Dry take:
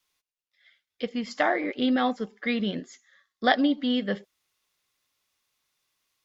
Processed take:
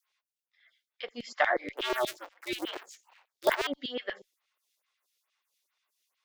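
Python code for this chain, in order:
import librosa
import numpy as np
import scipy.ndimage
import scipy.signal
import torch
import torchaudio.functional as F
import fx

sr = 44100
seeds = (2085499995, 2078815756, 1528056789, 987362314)

y = fx.cycle_switch(x, sr, every=2, mode='inverted', at=(1.77, 3.67))
y = fx.filter_lfo_highpass(y, sr, shape='saw_down', hz=8.3, low_hz=360.0, high_hz=3200.0, q=1.2)
y = fx.stagger_phaser(y, sr, hz=2.3)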